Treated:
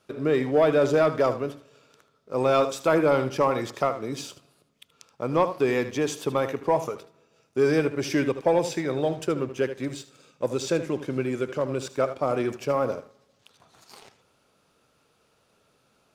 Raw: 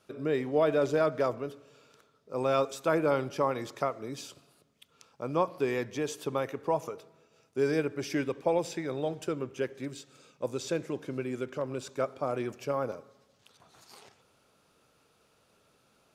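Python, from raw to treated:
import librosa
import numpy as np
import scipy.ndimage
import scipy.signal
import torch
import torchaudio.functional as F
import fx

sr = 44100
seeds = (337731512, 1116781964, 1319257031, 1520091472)

y = x + 10.0 ** (-12.5 / 20.0) * np.pad(x, (int(77 * sr / 1000.0), 0))[:len(x)]
y = fx.leveller(y, sr, passes=1)
y = fx.high_shelf(y, sr, hz=11000.0, db=-3.5)
y = y * 10.0 ** (3.0 / 20.0)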